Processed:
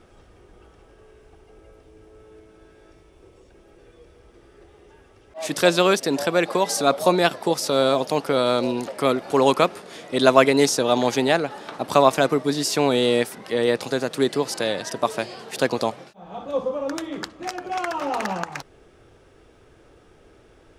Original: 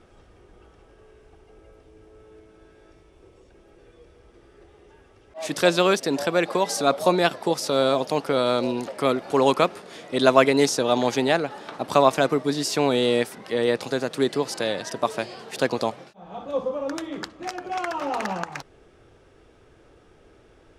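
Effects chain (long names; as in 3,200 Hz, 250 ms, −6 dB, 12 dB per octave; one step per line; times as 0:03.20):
high-shelf EQ 10,000 Hz +5.5 dB
level +1.5 dB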